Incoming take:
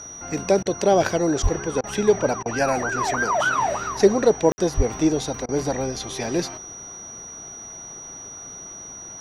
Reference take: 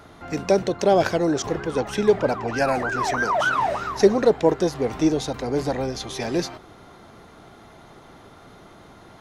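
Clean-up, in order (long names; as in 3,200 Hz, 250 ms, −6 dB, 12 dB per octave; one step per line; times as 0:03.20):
notch filter 5,800 Hz, Q 30
0:01.42–0:01.54: high-pass filter 140 Hz 24 dB per octave
0:04.76–0:04.88: high-pass filter 140 Hz 24 dB per octave
ambience match 0:04.52–0:04.58
repair the gap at 0:00.63/0:01.81/0:02.43/0:05.46, 26 ms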